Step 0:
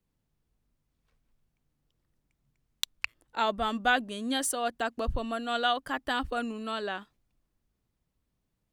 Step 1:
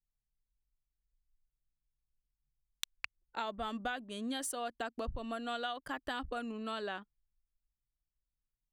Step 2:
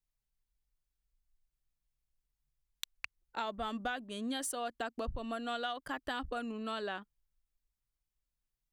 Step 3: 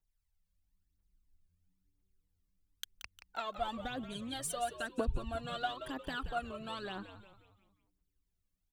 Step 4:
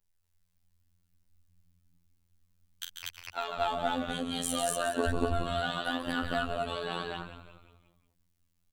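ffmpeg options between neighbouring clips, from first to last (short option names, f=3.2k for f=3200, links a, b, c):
-af "anlmdn=0.01,acompressor=threshold=-32dB:ratio=6,volume=-3dB"
-af "asoftclip=type=tanh:threshold=-21.5dB,volume=1dB"
-filter_complex "[0:a]aphaser=in_gain=1:out_gain=1:delay=1.9:decay=0.71:speed=1:type=triangular,asplit=2[a][b];[b]asplit=5[c][d][e][f][g];[c]adelay=177,afreqshift=-100,volume=-11dB[h];[d]adelay=354,afreqshift=-200,volume=-17.7dB[i];[e]adelay=531,afreqshift=-300,volume=-24.5dB[j];[f]adelay=708,afreqshift=-400,volume=-31.2dB[k];[g]adelay=885,afreqshift=-500,volume=-38dB[l];[h][i][j][k][l]amix=inputs=5:normalize=0[m];[a][m]amix=inputs=2:normalize=0,volume=-4dB"
-af "aecho=1:1:40.82|142.9|239.1:0.447|0.501|1,afftfilt=real='hypot(re,im)*cos(PI*b)':imag='0':win_size=2048:overlap=0.75,volume=7dB"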